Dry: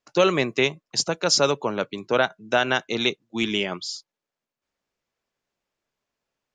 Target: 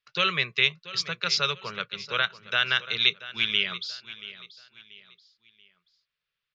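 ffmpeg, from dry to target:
ffmpeg -i in.wav -filter_complex "[0:a]firequalizer=gain_entry='entry(170,0);entry(280,-23);entry(410,-6);entry(800,-13);entry(1200,4);entry(2200,8);entry(3600,11);entry(7400,-13)':delay=0.05:min_phase=1,asplit=2[link_01][link_02];[link_02]aecho=0:1:683|1366|2049:0.158|0.0555|0.0194[link_03];[link_01][link_03]amix=inputs=2:normalize=0,volume=-6.5dB" out.wav

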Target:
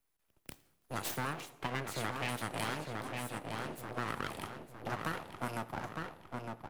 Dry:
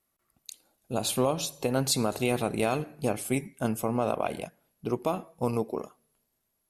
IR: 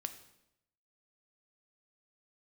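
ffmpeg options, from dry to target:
-filter_complex "[0:a]asettb=1/sr,asplit=3[link_01][link_02][link_03];[link_01]atrim=end=1.334[link_04];[link_02]atrim=start=1.33:end=2.29,asetpts=PTS-STARTPTS,afade=type=in:duration=0.004:curve=qsin,afade=type=out:start_time=0.956:duration=0.004:curve=qsin,highshelf=frequency=3000:width_type=q:width=3:gain=-13.5[link_05];[link_03]atrim=start=2.286[link_06];[link_04][link_05]acrossfade=duration=0.004:curve1=hsin:curve2=qsin[link_07];[link_07][link_06]acrossfade=duration=0.004:curve1=qsin:curve2=hsin,asettb=1/sr,asplit=3[link_08][link_09][link_10];[link_08]atrim=end=2.934[link_11];[link_09]atrim=start=2.93:end=3.97,asetpts=PTS-STARTPTS,afade=type=in:duration=0.004:curve=qsin,afade=type=out:start_time=1.036:duration=0.004:curve=qsin,acompressor=threshold=-45dB:ratio=2[link_12];[link_10]atrim=start=3.966[link_13];[link_11][link_12]acrossfade=duration=0.004:curve1=hsin:curve2=qsin[link_14];[link_14][link_13]acrossfade=duration=0.004:curve1=qsin:curve2=hsin,asplit=2[link_15][link_16];[link_16]adelay=908,lowpass=frequency=3500:poles=1,volume=-6.5dB,asplit=2[link_17][link_18];[link_18]adelay=908,lowpass=frequency=3500:poles=1,volume=0.42,asplit=2[link_19][link_20];[link_20]adelay=908,lowpass=frequency=3500:poles=1,volume=0.42,asplit=2[link_21][link_22];[link_22]adelay=908,lowpass=frequency=3500:poles=1,volume=0.42,asplit=2[link_23][link_24];[link_24]adelay=908,lowpass=frequency=3500:poles=1,volume=0.42[link_25];[link_15][link_17][link_19][link_21][link_23][link_25]amix=inputs=6:normalize=0,aeval=exprs='abs(val(0))':channel_layout=same,acrossover=split=100|1000[link_26][link_27][link_28];[link_26]acompressor=threshold=-56dB:ratio=4[link_29];[link_27]acompressor=threshold=-35dB:ratio=4[link_30];[link_28]acompressor=threshold=-33dB:ratio=4[link_31];[link_29][link_30][link_31]amix=inputs=3:normalize=0,asplit=2[link_32][link_33];[1:a]atrim=start_sample=2205[link_34];[link_33][link_34]afir=irnorm=-1:irlink=0,volume=-2dB[link_35];[link_32][link_35]amix=inputs=2:normalize=0,volume=-6.5dB"

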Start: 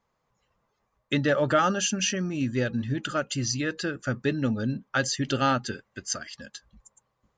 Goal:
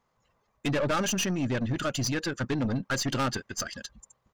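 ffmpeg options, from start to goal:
ffmpeg -i in.wav -af "aeval=exprs='(tanh(22.4*val(0)+0.3)-tanh(0.3))/22.4':channel_layout=same,atempo=1.7,volume=3.5dB" out.wav

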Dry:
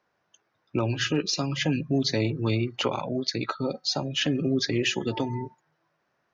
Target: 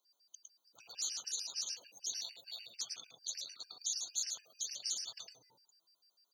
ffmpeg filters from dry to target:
ffmpeg -i in.wav -filter_complex "[0:a]highpass=frequency=190:width=0.5412,highpass=frequency=190:width=1.3066,equalizer=frequency=1000:width_type=o:width=0.25:gain=3,afftfilt=real='re*lt(hypot(re,im),0.0447)':imag='im*lt(hypot(re,im),0.0447)':win_size=1024:overlap=0.75,aderivative,acrossover=split=480|3300[link_01][link_02][link_03];[link_02]adynamicsmooth=sensitivity=7:basefreq=770[link_04];[link_01][link_04][link_03]amix=inputs=3:normalize=0,aeval=exprs='val(0)+0.0001*sin(2*PI*4700*n/s)':channel_layout=same,aecho=1:1:107:0.708,afftfilt=real='re*gt(sin(2*PI*6.7*pts/sr)*(1-2*mod(floor(b*sr/1024/1500),2)),0)':imag='im*gt(sin(2*PI*6.7*pts/sr)*(1-2*mod(floor(b*sr/1024/1500),2)),0)':win_size=1024:overlap=0.75,volume=9.5dB" out.wav

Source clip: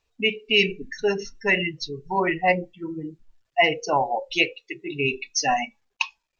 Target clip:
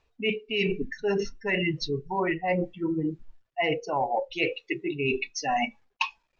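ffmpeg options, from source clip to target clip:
ffmpeg -i in.wav -af "aemphasis=mode=reproduction:type=75fm,areverse,acompressor=threshold=-31dB:ratio=8,areverse,volume=7dB" out.wav

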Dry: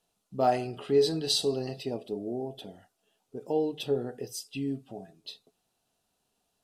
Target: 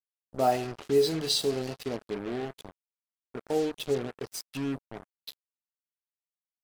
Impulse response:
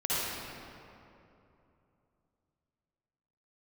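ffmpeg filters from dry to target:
-af "acrusher=bits=5:mix=0:aa=0.5"

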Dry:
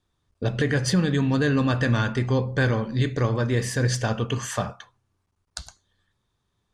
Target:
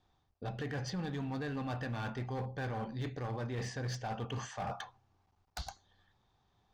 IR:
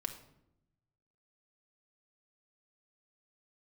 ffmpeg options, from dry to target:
-af "lowpass=frequency=6100:width=0.5412,lowpass=frequency=6100:width=1.3066,equalizer=frequency=780:width=4.2:gain=13.5,areverse,acompressor=threshold=-35dB:ratio=8,areverse,asoftclip=type=hard:threshold=-33dB"

